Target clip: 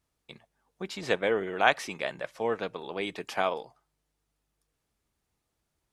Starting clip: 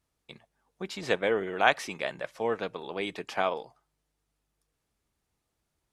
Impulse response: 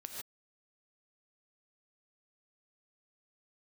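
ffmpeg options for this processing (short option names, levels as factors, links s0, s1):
-filter_complex "[0:a]asettb=1/sr,asplit=3[s0][s1][s2];[s0]atrim=end=3.204[s3];[s1]atrim=start=3.2:end=3.61,asetpts=PTS-STARTPTS,afade=t=in:d=0.004:c=qsin,afade=t=out:st=0.406:d=0.004:c=qsin,highshelf=f=9400:g=9.5[s4];[s2]atrim=start=3.606[s5];[s3][s4]acrossfade=d=0.004:c1=hsin:c2=qsin[s6];[s6][s5]acrossfade=d=0.004:c1=qsin:c2=hsin"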